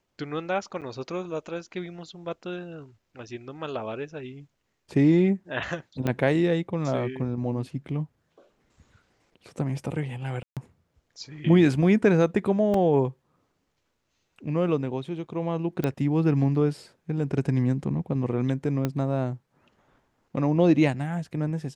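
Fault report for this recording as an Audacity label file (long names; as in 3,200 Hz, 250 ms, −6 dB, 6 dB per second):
0.810000	0.820000	drop-out 7.8 ms
6.070000	6.070000	click −14 dBFS
10.430000	10.570000	drop-out 137 ms
12.740000	12.740000	drop-out 3 ms
15.840000	15.840000	click −14 dBFS
18.850000	18.850000	click −13 dBFS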